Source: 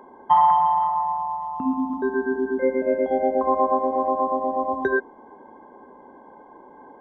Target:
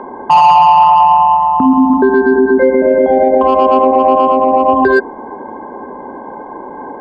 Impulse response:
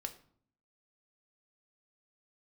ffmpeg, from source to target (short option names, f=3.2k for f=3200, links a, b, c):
-filter_complex "[0:a]lowpass=2.2k,acrossover=split=740[a][b];[b]asoftclip=type=tanh:threshold=-22.5dB[c];[a][c]amix=inputs=2:normalize=0,alimiter=level_in=20dB:limit=-1dB:release=50:level=0:latency=1,volume=-1dB"